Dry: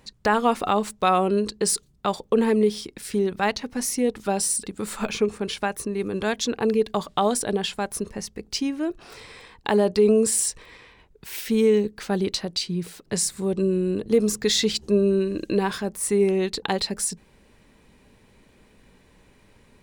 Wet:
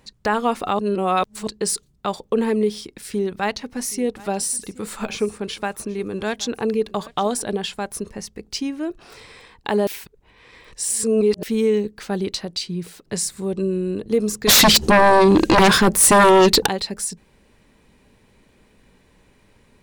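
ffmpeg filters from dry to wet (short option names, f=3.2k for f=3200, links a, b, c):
-filter_complex "[0:a]asettb=1/sr,asplit=3[a][b][c];[a]atrim=end=2.804[d];[b]atrim=start=2.8:end=7.56,asetpts=PTS-STARTPTS,afade=t=in:d=0.004:c=qsin,afade=t=out:st=4.756:d=0.004:c=qsin,aecho=1:1:774:0.0891,atrim=end_sample=209916[e];[c]atrim=start=7.556[f];[d][e]acrossfade=d=0.004:c1=hsin:c2=qsin[g];[g][f]acrossfade=d=0.004:c1=qsin:c2=hsin,asplit=3[h][i][j];[h]afade=t=out:st=14.47:d=0.02[k];[i]aeval=exprs='0.376*sin(PI/2*5.01*val(0)/0.376)':c=same,afade=t=in:st=14.47:d=0.02,afade=t=out:st=16.67:d=0.02[l];[j]afade=t=in:st=16.67:d=0.02[m];[k][l][m]amix=inputs=3:normalize=0,asplit=5[n][o][p][q][r];[n]atrim=end=0.792[s];[o]atrim=start=0.788:end=1.472,asetpts=PTS-STARTPTS,areverse[t];[p]atrim=start=1.468:end=9.872[u];[q]atrim=start=9.868:end=11.432,asetpts=PTS-STARTPTS,areverse[v];[r]atrim=start=11.428[w];[s][t]acrossfade=d=0.004:c1=hsin:c2=hsin[x];[x][u]acrossfade=d=0.004:c1=hsin:c2=hsin[y];[y][v]acrossfade=d=0.004:c1=hsin:c2=hsin[z];[z][w]acrossfade=d=0.004:c1=hsin:c2=hsin"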